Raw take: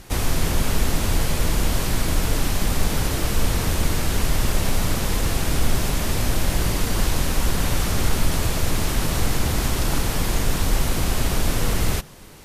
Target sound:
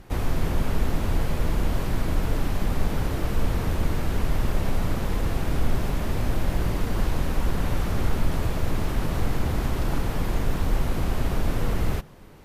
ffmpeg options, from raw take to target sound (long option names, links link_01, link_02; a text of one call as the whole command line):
ffmpeg -i in.wav -af "equalizer=frequency=8400:width=0.32:gain=-13.5,volume=-2.5dB" out.wav